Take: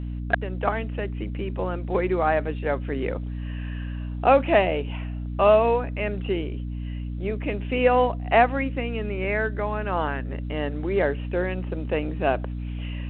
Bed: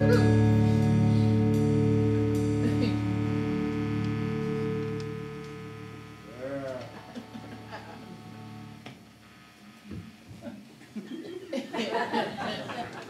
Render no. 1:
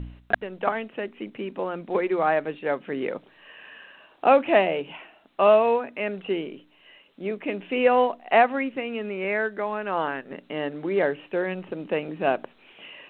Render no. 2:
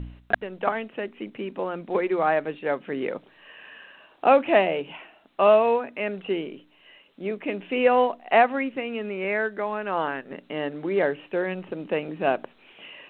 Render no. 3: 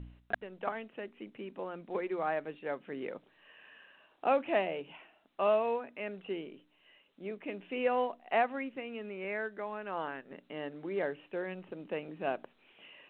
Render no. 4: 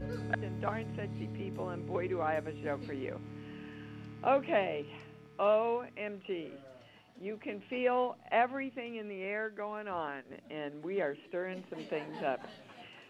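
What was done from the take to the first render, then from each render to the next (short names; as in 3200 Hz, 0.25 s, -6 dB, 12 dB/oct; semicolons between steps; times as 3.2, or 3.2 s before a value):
de-hum 60 Hz, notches 5
nothing audible
gain -11 dB
add bed -18 dB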